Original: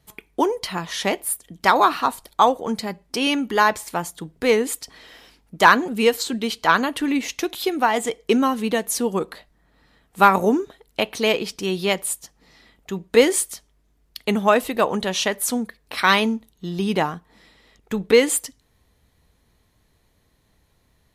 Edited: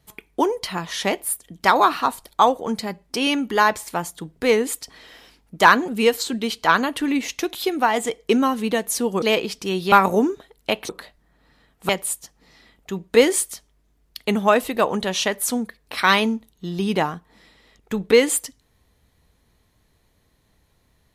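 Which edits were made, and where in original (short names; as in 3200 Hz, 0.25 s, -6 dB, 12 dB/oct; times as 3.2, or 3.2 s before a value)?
9.22–10.22 swap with 11.19–11.89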